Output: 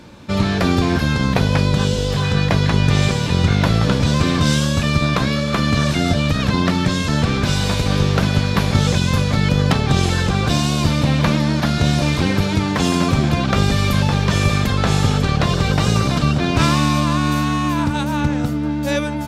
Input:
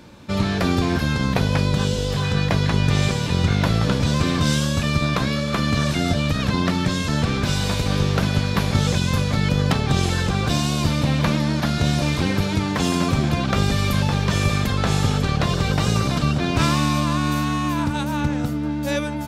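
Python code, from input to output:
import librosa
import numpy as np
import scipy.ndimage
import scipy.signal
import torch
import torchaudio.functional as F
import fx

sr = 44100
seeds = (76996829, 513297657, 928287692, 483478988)

y = fx.high_shelf(x, sr, hz=12000.0, db=-5.5)
y = y * librosa.db_to_amplitude(3.5)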